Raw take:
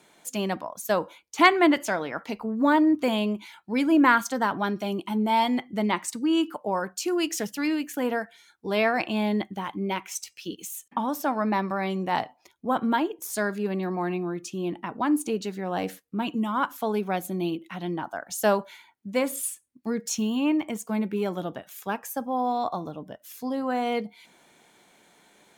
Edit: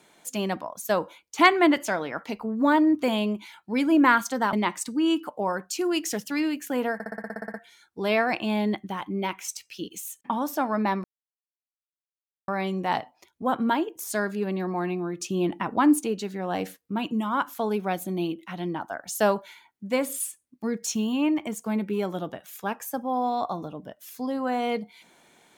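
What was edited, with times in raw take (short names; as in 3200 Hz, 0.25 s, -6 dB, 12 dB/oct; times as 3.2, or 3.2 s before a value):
4.53–5.8 cut
8.21 stutter 0.06 s, 11 plays
11.71 insert silence 1.44 s
14.44–15.24 gain +4.5 dB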